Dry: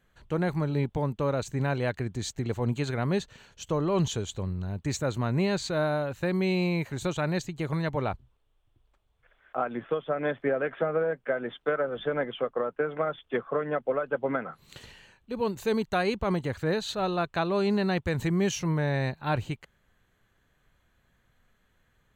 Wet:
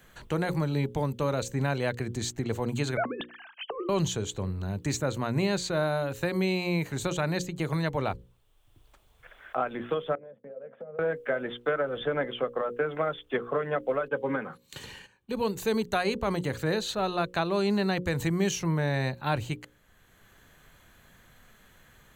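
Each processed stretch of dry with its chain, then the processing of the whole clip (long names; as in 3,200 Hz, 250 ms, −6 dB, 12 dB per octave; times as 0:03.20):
0:02.97–0:03.89: three sine waves on the formant tracks + high-shelf EQ 2,500 Hz −6.5 dB + compressor whose output falls as the input rises −32 dBFS, ratio −0.5
0:10.15–0:10.99: downward expander −43 dBFS + pair of resonant band-passes 330 Hz, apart 1.3 octaves + downward compressor 3 to 1, threshold −48 dBFS
0:14.08–0:15.33: noise gate −54 dBFS, range −15 dB + notch comb filter 670 Hz
whole clip: high-shelf EQ 5,600 Hz +8 dB; mains-hum notches 60/120/180/240/300/360/420/480/540 Hz; multiband upward and downward compressor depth 40%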